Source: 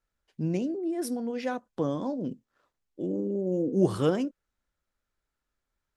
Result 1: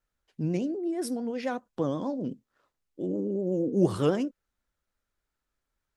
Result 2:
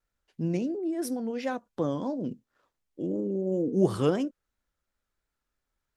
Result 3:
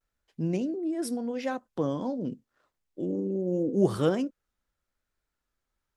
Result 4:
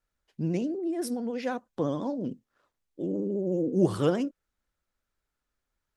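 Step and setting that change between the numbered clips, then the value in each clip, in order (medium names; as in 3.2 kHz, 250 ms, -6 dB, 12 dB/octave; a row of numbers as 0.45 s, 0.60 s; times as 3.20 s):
vibrato, rate: 8.3 Hz, 2.9 Hz, 0.83 Hz, 14 Hz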